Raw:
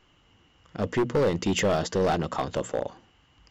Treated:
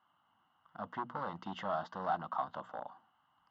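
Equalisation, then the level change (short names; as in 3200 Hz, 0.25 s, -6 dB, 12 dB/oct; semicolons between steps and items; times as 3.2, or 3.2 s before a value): speaker cabinet 250–2800 Hz, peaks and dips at 300 Hz -6 dB, 540 Hz -9 dB, 1800 Hz -7 dB; low shelf 320 Hz -8 dB; fixed phaser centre 1000 Hz, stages 4; -2.0 dB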